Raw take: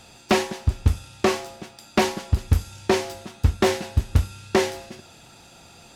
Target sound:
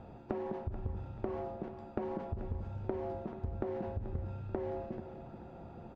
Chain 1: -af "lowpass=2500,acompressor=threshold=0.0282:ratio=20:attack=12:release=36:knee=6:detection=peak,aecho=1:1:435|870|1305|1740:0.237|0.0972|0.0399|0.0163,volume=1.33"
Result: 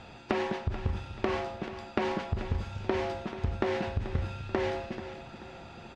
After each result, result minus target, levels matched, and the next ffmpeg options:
2 kHz band +11.5 dB; compression: peak gain reduction -8 dB
-af "lowpass=730,acompressor=threshold=0.0282:ratio=20:attack=12:release=36:knee=6:detection=peak,aecho=1:1:435|870|1305|1740:0.237|0.0972|0.0399|0.0163,volume=1.33"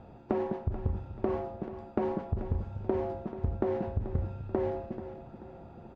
compression: peak gain reduction -8 dB
-af "lowpass=730,acompressor=threshold=0.0106:ratio=20:attack=12:release=36:knee=6:detection=peak,aecho=1:1:435|870|1305|1740:0.237|0.0972|0.0399|0.0163,volume=1.33"

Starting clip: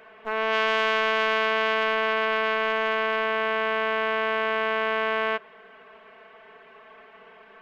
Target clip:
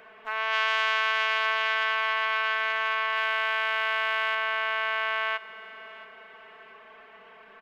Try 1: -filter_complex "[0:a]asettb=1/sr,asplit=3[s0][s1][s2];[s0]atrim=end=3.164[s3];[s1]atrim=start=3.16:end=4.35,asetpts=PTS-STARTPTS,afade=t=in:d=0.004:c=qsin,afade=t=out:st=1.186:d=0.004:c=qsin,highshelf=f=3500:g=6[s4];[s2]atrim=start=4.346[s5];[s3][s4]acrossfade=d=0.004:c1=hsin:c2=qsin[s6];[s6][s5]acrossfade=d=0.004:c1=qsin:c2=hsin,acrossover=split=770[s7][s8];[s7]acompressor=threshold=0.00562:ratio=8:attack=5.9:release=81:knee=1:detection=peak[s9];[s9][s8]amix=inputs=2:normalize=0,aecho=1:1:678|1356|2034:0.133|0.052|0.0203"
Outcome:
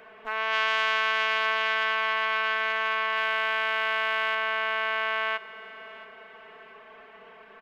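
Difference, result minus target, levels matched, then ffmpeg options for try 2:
compression: peak gain reduction -9.5 dB
-filter_complex "[0:a]asettb=1/sr,asplit=3[s0][s1][s2];[s0]atrim=end=3.164[s3];[s1]atrim=start=3.16:end=4.35,asetpts=PTS-STARTPTS,afade=t=in:d=0.004:c=qsin,afade=t=out:st=1.186:d=0.004:c=qsin,highshelf=f=3500:g=6[s4];[s2]atrim=start=4.346[s5];[s3][s4]acrossfade=d=0.004:c1=hsin:c2=qsin[s6];[s6][s5]acrossfade=d=0.004:c1=qsin:c2=hsin,acrossover=split=770[s7][s8];[s7]acompressor=threshold=0.00158:ratio=8:attack=5.9:release=81:knee=1:detection=peak[s9];[s9][s8]amix=inputs=2:normalize=0,aecho=1:1:678|1356|2034:0.133|0.052|0.0203"

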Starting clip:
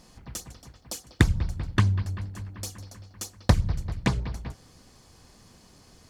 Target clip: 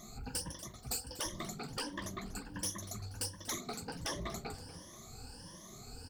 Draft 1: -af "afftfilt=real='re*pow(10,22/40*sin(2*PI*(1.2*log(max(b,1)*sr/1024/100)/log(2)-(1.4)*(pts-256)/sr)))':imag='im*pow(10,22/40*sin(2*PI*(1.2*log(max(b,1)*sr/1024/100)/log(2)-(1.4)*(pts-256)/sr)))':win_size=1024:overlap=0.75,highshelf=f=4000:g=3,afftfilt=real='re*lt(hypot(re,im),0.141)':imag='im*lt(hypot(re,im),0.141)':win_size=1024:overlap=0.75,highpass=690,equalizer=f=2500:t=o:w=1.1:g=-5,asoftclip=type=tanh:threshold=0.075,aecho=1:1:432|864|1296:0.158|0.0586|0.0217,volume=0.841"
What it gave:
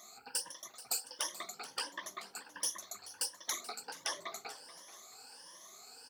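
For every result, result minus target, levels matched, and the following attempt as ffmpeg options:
echo 192 ms late; 500 Hz band -7.0 dB; saturation: distortion -6 dB
-af "afftfilt=real='re*pow(10,22/40*sin(2*PI*(1.2*log(max(b,1)*sr/1024/100)/log(2)-(1.4)*(pts-256)/sr)))':imag='im*pow(10,22/40*sin(2*PI*(1.2*log(max(b,1)*sr/1024/100)/log(2)-(1.4)*(pts-256)/sr)))':win_size=1024:overlap=0.75,highshelf=f=4000:g=3,afftfilt=real='re*lt(hypot(re,im),0.141)':imag='im*lt(hypot(re,im),0.141)':win_size=1024:overlap=0.75,highpass=690,equalizer=f=2500:t=o:w=1.1:g=-5,asoftclip=type=tanh:threshold=0.075,aecho=1:1:240|480|720:0.158|0.0586|0.0217,volume=0.841"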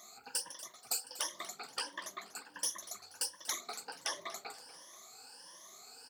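500 Hz band -7.0 dB; saturation: distortion -6 dB
-af "afftfilt=real='re*pow(10,22/40*sin(2*PI*(1.2*log(max(b,1)*sr/1024/100)/log(2)-(1.4)*(pts-256)/sr)))':imag='im*pow(10,22/40*sin(2*PI*(1.2*log(max(b,1)*sr/1024/100)/log(2)-(1.4)*(pts-256)/sr)))':win_size=1024:overlap=0.75,highshelf=f=4000:g=3,afftfilt=real='re*lt(hypot(re,im),0.141)':imag='im*lt(hypot(re,im),0.141)':win_size=1024:overlap=0.75,equalizer=f=2500:t=o:w=1.1:g=-5,asoftclip=type=tanh:threshold=0.075,aecho=1:1:240|480|720:0.158|0.0586|0.0217,volume=0.841"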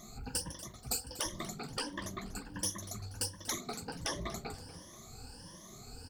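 saturation: distortion -7 dB
-af "afftfilt=real='re*pow(10,22/40*sin(2*PI*(1.2*log(max(b,1)*sr/1024/100)/log(2)-(1.4)*(pts-256)/sr)))':imag='im*pow(10,22/40*sin(2*PI*(1.2*log(max(b,1)*sr/1024/100)/log(2)-(1.4)*(pts-256)/sr)))':win_size=1024:overlap=0.75,highshelf=f=4000:g=3,afftfilt=real='re*lt(hypot(re,im),0.141)':imag='im*lt(hypot(re,im),0.141)':win_size=1024:overlap=0.75,equalizer=f=2500:t=o:w=1.1:g=-5,asoftclip=type=tanh:threshold=0.0335,aecho=1:1:240|480|720:0.158|0.0586|0.0217,volume=0.841"

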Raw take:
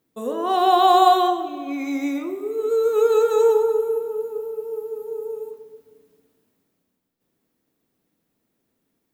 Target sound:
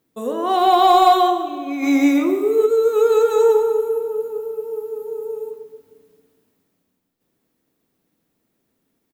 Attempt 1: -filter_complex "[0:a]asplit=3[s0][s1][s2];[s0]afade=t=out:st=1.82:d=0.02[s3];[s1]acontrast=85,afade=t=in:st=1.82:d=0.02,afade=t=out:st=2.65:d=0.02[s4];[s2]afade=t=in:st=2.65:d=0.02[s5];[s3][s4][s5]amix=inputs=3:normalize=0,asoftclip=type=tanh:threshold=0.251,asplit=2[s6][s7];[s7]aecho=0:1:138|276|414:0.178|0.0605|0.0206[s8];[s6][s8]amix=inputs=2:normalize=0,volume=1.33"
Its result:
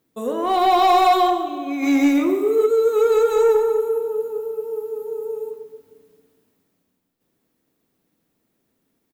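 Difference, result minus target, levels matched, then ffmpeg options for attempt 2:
saturation: distortion +11 dB
-filter_complex "[0:a]asplit=3[s0][s1][s2];[s0]afade=t=out:st=1.82:d=0.02[s3];[s1]acontrast=85,afade=t=in:st=1.82:d=0.02,afade=t=out:st=2.65:d=0.02[s4];[s2]afade=t=in:st=2.65:d=0.02[s5];[s3][s4][s5]amix=inputs=3:normalize=0,asoftclip=type=tanh:threshold=0.631,asplit=2[s6][s7];[s7]aecho=0:1:138|276|414:0.178|0.0605|0.0206[s8];[s6][s8]amix=inputs=2:normalize=0,volume=1.33"

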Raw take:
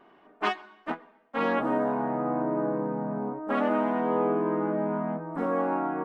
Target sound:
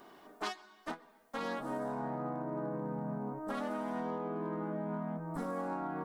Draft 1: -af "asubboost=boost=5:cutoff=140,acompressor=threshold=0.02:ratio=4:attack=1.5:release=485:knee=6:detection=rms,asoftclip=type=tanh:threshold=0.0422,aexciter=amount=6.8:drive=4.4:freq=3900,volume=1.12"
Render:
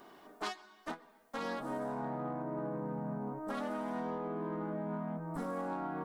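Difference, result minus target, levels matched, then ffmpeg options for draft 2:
saturation: distortion +20 dB
-af "asubboost=boost=5:cutoff=140,acompressor=threshold=0.02:ratio=4:attack=1.5:release=485:knee=6:detection=rms,asoftclip=type=tanh:threshold=0.141,aexciter=amount=6.8:drive=4.4:freq=3900,volume=1.12"

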